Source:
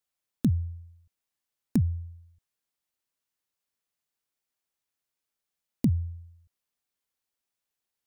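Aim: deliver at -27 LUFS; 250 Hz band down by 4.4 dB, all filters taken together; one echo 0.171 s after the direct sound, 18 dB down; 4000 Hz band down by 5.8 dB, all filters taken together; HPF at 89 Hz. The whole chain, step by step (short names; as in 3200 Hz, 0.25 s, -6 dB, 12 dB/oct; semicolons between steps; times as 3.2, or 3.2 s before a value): HPF 89 Hz; bell 250 Hz -5.5 dB; bell 4000 Hz -7.5 dB; echo 0.171 s -18 dB; gain +6.5 dB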